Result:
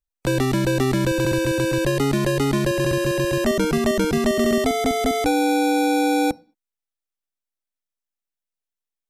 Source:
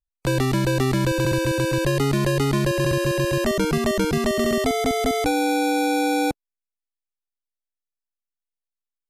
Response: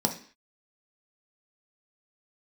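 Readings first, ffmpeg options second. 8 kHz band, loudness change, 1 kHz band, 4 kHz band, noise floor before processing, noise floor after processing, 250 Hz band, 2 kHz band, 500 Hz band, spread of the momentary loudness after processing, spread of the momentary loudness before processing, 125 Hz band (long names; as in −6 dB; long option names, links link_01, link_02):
+0.5 dB, +1.0 dB, +1.0 dB, 0.0 dB, below −85 dBFS, below −85 dBFS, +2.0 dB, +0.5 dB, +1.5 dB, 2 LU, 1 LU, −1.5 dB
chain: -filter_complex "[0:a]asplit=2[link_01][link_02];[1:a]atrim=start_sample=2205,afade=type=out:start_time=0.28:duration=0.01,atrim=end_sample=12789[link_03];[link_02][link_03]afir=irnorm=-1:irlink=0,volume=-25.5dB[link_04];[link_01][link_04]amix=inputs=2:normalize=0"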